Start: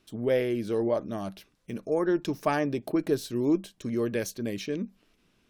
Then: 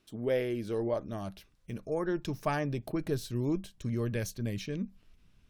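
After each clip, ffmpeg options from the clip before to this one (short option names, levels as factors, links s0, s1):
-af "asubboost=boost=7.5:cutoff=120,volume=0.631"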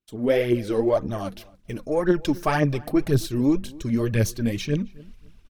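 -filter_complex "[0:a]aphaser=in_gain=1:out_gain=1:delay=4.3:decay=0.58:speed=1.9:type=triangular,asplit=2[s0][s1];[s1]adelay=267,lowpass=f=2300:p=1,volume=0.0794,asplit=2[s2][s3];[s3]adelay=267,lowpass=f=2300:p=1,volume=0.25[s4];[s0][s2][s4]amix=inputs=3:normalize=0,agate=range=0.0224:threshold=0.00251:ratio=3:detection=peak,volume=2.51"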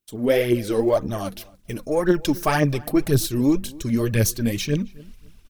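-af "crystalizer=i=1.5:c=0,volume=1.19"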